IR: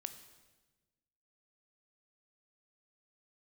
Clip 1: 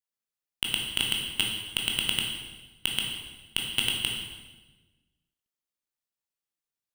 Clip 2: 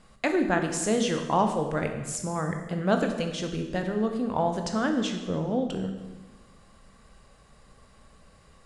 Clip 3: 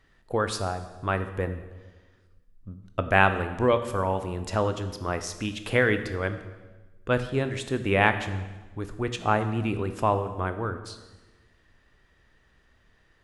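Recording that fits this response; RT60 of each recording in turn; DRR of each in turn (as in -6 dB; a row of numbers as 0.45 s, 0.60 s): 3; 1.2 s, 1.2 s, 1.2 s; -1.0 dB, 5.0 dB, 9.0 dB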